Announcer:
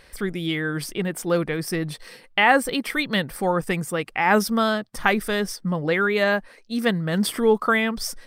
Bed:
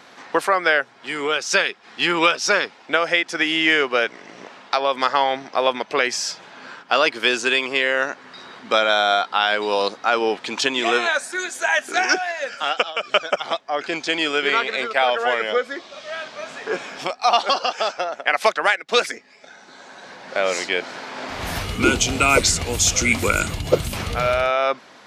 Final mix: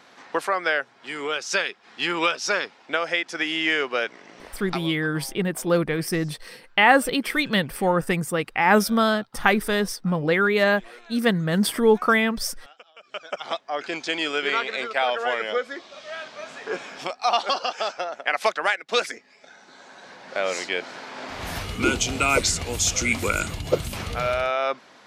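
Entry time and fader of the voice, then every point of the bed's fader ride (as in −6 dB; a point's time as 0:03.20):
4.40 s, +1.0 dB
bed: 0:04.70 −5.5 dB
0:04.95 −28.5 dB
0:12.84 −28.5 dB
0:13.48 −4.5 dB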